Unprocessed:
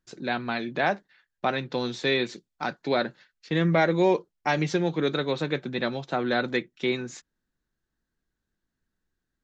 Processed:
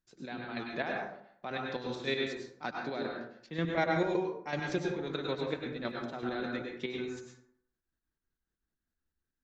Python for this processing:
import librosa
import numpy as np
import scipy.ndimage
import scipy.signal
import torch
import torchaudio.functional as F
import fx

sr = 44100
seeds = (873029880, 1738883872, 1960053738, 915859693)

y = fx.dmg_crackle(x, sr, seeds[0], per_s=72.0, level_db=-53.0, at=(5.82, 6.29), fade=0.02)
y = fx.chopper(y, sr, hz=5.3, depth_pct=60, duty_pct=35)
y = fx.rev_plate(y, sr, seeds[1], rt60_s=0.66, hf_ratio=0.5, predelay_ms=90, drr_db=0.0)
y = y * 10.0 ** (-7.5 / 20.0)